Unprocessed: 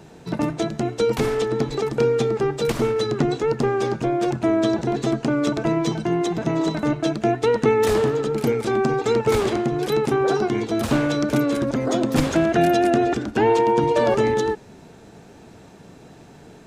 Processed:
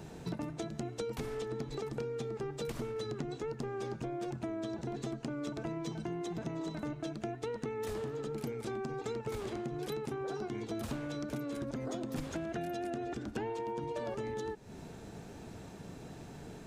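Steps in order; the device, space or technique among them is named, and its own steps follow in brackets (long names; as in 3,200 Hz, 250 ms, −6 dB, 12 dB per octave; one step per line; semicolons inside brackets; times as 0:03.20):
ASMR close-microphone chain (low-shelf EQ 140 Hz +6.5 dB; downward compressor 10 to 1, threshold −31 dBFS, peak gain reduction 19 dB; high-shelf EQ 8,200 Hz +4.5 dB)
level −4.5 dB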